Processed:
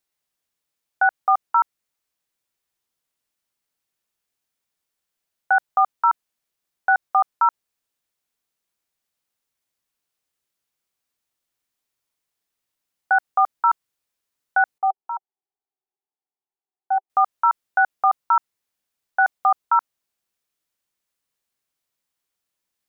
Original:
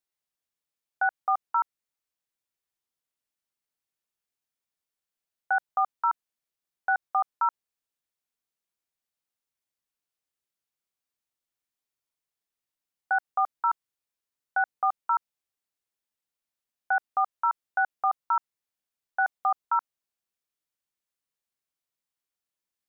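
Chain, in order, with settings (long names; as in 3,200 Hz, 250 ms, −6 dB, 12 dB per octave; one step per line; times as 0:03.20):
0:14.78–0:17.10: pair of resonant band-passes 550 Hz, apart 0.98 octaves
level +7.5 dB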